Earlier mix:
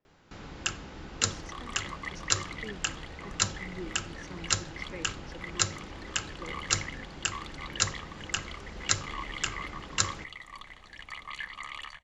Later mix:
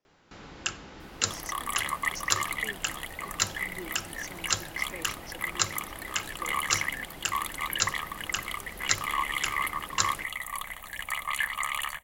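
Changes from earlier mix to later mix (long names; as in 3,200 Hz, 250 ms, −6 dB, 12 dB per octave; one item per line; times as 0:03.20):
speech: add bass and treble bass −3 dB, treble +14 dB
second sound: remove transistor ladder low-pass 5,600 Hz, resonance 60%
master: add low-shelf EQ 170 Hz −6.5 dB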